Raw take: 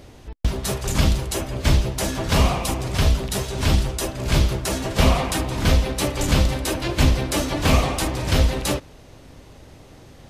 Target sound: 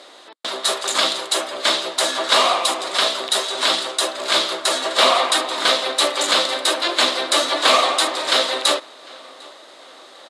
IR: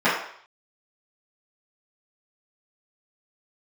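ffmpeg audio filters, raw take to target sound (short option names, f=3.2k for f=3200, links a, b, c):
-filter_complex "[0:a]highpass=f=430:w=0.5412,highpass=f=430:w=1.3066,equalizer=f=440:t=q:w=4:g=-8,equalizer=f=840:t=q:w=4:g=-4,equalizer=f=1.2k:t=q:w=4:g=4,equalizer=f=2.5k:t=q:w=4:g=-5,equalizer=f=3.8k:t=q:w=4:g=9,equalizer=f=5.9k:t=q:w=4:g=-7,lowpass=f=9.7k:w=0.5412,lowpass=f=9.7k:w=1.3066,asplit=2[a][b];[b]adelay=751,lowpass=f=3.8k:p=1,volume=-23dB,asplit=2[c][d];[d]adelay=751,lowpass=f=3.8k:p=1,volume=0.48,asplit=2[e][f];[f]adelay=751,lowpass=f=3.8k:p=1,volume=0.48[g];[c][e][g]amix=inputs=3:normalize=0[h];[a][h]amix=inputs=2:normalize=0,volume=8dB"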